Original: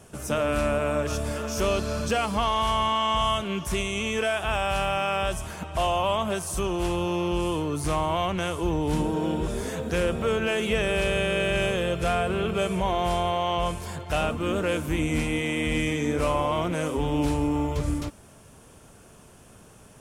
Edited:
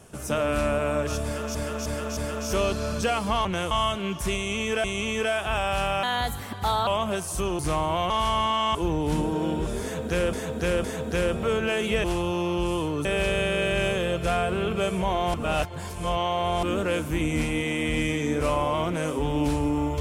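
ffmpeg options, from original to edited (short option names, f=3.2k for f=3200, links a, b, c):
-filter_complex "[0:a]asplit=18[a][b][c][d][e][f][g][h][i][j][k][l][m][n][o][p][q][r];[a]atrim=end=1.552[s];[b]atrim=start=1.238:end=1.552[t];[c]atrim=start=1.238:end=1.552[u];[d]atrim=start=1.238:end=2.522[v];[e]atrim=start=8.298:end=8.562[w];[f]atrim=start=3.168:end=4.302[x];[g]atrim=start=3.818:end=5.014[y];[h]atrim=start=5.01:end=6.06,asetpts=PTS-STARTPTS,asetrate=55125,aresample=44100[z];[i]atrim=start=6.056:end=6.782[aa];[j]atrim=start=7.788:end=8.302[ab];[k]atrim=start=2.518:end=3.172[ac];[l]atrim=start=8.558:end=10.142[ad];[m]atrim=start=9.628:end=10.142[ae];[n]atrim=start=9.628:end=10.832[af];[o]atrim=start=6.778:end=7.792[ag];[p]atrim=start=10.828:end=13.122[ah];[q]atrim=start=13.118:end=14.412,asetpts=PTS-STARTPTS,areverse[ai];[r]atrim=start=14.408[aj];[s][t]acrossfade=d=0.004:c1=hsin:c2=hsin[ak];[ak][u]acrossfade=d=0.004:c1=hsin:c2=hsin[al];[al][v]acrossfade=d=0.004:c1=hsin:c2=hsin[am];[am][w]acrossfade=d=0.004:c1=hsin:c2=hsin[an];[an][x]acrossfade=d=0.004:c1=hsin:c2=hsin[ao];[ao][y]acrossfade=d=0.004:c1=hsin:c2=hsin[ap];[ap][z]acrossfade=d=0.004:c1=hsin:c2=hsin[aq];[aq][aa]acrossfade=d=0.004:c1=hsin:c2=hsin[ar];[ar][ab]acrossfade=d=0.004:c1=hsin:c2=hsin[as];[as][ac]acrossfade=d=0.004:c1=hsin:c2=hsin[at];[at][ad]acrossfade=d=0.004:c1=hsin:c2=hsin[au];[au][ae]acrossfade=d=0.004:c1=hsin:c2=hsin[av];[av][af]acrossfade=d=0.004:c1=hsin:c2=hsin[aw];[aw][ag]acrossfade=d=0.004:c1=hsin:c2=hsin[ax];[ax][ah]acrossfade=d=0.004:c1=hsin:c2=hsin[ay];[ay][ai]acrossfade=d=0.004:c1=hsin:c2=hsin[az];[az][aj]acrossfade=d=0.004:c1=hsin:c2=hsin"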